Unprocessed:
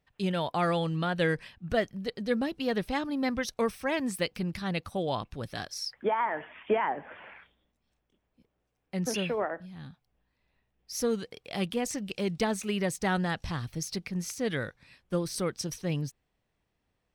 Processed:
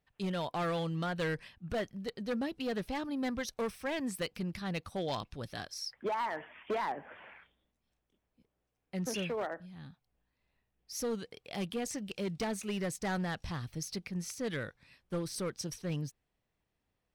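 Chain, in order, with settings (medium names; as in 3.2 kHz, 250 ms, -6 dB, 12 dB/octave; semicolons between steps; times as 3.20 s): wow and flutter 24 cents; overload inside the chain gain 25 dB; 4.85–5.54 s: dynamic bell 4.7 kHz, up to +7 dB, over -55 dBFS, Q 0.93; trim -4.5 dB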